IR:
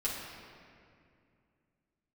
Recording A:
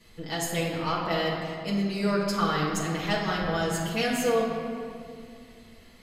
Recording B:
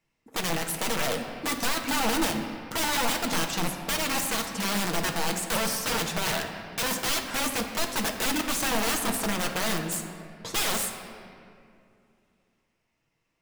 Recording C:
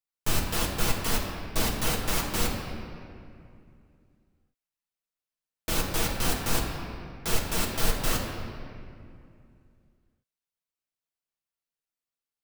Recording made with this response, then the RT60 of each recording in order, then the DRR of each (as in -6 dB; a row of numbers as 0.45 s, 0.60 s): A; 2.4 s, 2.4 s, 2.4 s; -8.0 dB, 2.5 dB, -2.5 dB